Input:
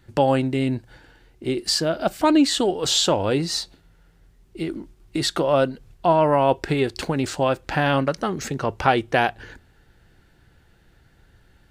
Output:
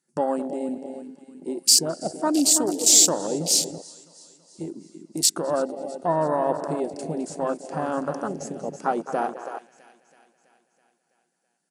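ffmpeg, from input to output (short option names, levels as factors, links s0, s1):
-filter_complex "[0:a]asplit=2[s0][s1];[s1]adelay=211,lowpass=f=4600:p=1,volume=0.282,asplit=2[s2][s3];[s3]adelay=211,lowpass=f=4600:p=1,volume=0.41,asplit=2[s4][s5];[s5]adelay=211,lowpass=f=4600:p=1,volume=0.41,asplit=2[s6][s7];[s7]adelay=211,lowpass=f=4600:p=1,volume=0.41[s8];[s2][s4][s6][s8]amix=inputs=4:normalize=0[s9];[s0][s9]amix=inputs=2:normalize=0,aexciter=amount=10.5:drive=2.2:freq=5200,afftfilt=real='re*between(b*sr/4096,150,11000)':imag='im*between(b*sr/4096,150,11000)':win_size=4096:overlap=0.75,asplit=2[s10][s11];[s11]aecho=0:1:328|656|984|1312|1640|1968|2296:0.335|0.198|0.117|0.0688|0.0406|0.0239|0.0141[s12];[s10][s12]amix=inputs=2:normalize=0,afwtdn=0.1,volume=0.531"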